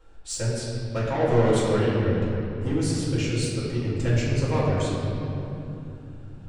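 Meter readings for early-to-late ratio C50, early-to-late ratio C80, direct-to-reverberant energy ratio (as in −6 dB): −2.0 dB, −0.5 dB, −9.0 dB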